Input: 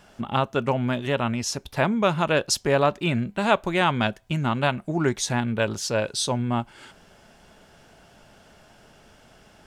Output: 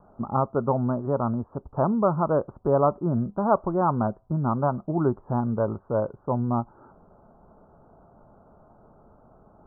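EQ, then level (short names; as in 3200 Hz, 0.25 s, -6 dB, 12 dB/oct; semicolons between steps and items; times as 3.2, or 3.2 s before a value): steep low-pass 1300 Hz 72 dB/oct; 0.0 dB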